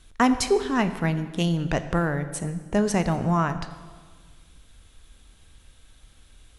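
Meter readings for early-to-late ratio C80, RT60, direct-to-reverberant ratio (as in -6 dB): 13.0 dB, 1.6 s, 10.0 dB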